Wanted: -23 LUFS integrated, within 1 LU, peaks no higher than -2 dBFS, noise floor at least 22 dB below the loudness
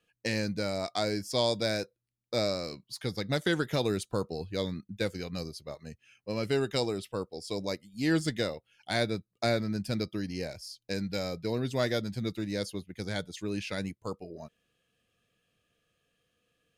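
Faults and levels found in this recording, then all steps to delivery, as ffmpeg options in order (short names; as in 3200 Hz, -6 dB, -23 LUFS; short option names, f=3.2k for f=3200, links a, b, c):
loudness -32.5 LUFS; peak -15.5 dBFS; loudness target -23.0 LUFS
-> -af "volume=9.5dB"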